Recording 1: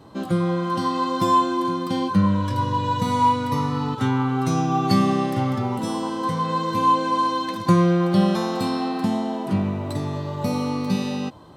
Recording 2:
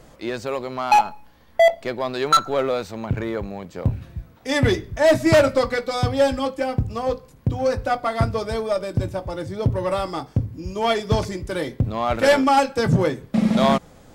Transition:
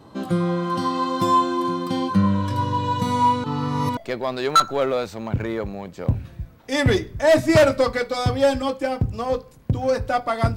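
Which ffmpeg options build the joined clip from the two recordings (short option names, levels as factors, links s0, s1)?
-filter_complex "[0:a]apad=whole_dur=10.56,atrim=end=10.56,asplit=2[s0][s1];[s0]atrim=end=3.442[s2];[s1]atrim=start=3.438:end=3.972,asetpts=PTS-STARTPTS,areverse[s3];[1:a]atrim=start=1.738:end=8.33[s4];[s2][s3]acrossfade=d=0.004:c1=hsin:c2=hsin[s5];[s5][s4]acrossfade=d=0.004:c1=hsin:c2=hsin"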